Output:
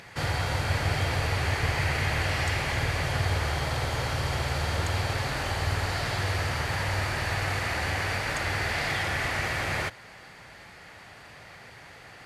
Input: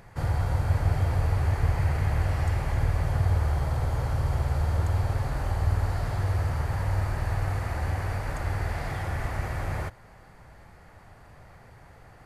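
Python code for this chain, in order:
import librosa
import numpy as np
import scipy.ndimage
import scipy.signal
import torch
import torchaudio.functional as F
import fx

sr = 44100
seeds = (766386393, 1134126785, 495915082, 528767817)

y = fx.weighting(x, sr, curve='D')
y = y * 10.0 ** (3.5 / 20.0)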